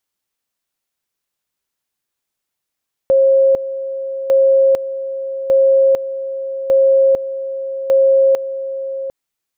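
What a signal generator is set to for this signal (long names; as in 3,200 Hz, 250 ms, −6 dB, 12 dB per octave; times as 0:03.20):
tone at two levels in turn 539 Hz −8 dBFS, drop 12.5 dB, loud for 0.45 s, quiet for 0.75 s, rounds 5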